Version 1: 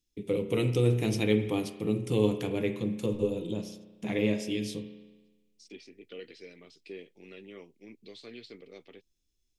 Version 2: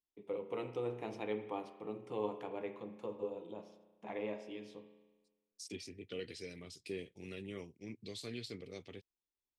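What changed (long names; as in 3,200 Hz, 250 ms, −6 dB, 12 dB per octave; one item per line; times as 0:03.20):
first voice: add resonant band-pass 900 Hz, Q 2.2
second voice: remove band-pass filter 230–4,100 Hz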